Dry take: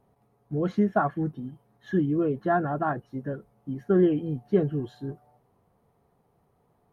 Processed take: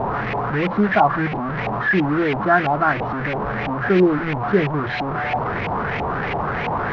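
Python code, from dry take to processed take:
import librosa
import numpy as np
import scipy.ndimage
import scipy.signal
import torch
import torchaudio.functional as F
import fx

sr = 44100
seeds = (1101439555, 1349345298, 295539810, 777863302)

y = fx.delta_mod(x, sr, bps=32000, step_db=-24.5)
y = fx.filter_lfo_lowpass(y, sr, shape='saw_up', hz=3.0, low_hz=780.0, high_hz=2500.0, q=3.8)
y = y * librosa.db_to_amplitude(4.5)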